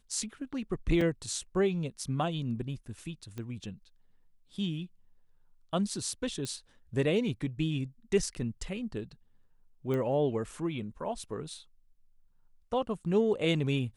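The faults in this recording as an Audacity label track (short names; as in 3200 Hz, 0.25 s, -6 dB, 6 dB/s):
1.010000	1.010000	gap 3.6 ms
3.380000	3.380000	pop -27 dBFS
6.450000	6.450000	pop -23 dBFS
9.940000	9.940000	pop -23 dBFS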